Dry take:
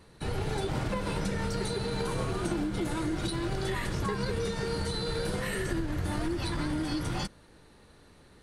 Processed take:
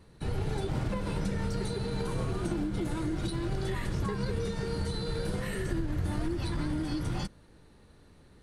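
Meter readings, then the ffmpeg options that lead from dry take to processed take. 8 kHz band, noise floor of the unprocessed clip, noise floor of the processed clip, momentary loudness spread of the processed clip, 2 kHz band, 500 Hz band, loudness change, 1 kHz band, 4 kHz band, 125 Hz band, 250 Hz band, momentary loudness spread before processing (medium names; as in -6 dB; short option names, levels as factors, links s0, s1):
-5.0 dB, -57 dBFS, -57 dBFS, 1 LU, -5.0 dB, -2.5 dB, -1.0 dB, -4.0 dB, -5.0 dB, +1.0 dB, -0.5 dB, 1 LU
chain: -af "lowshelf=f=330:g=7,volume=0.562"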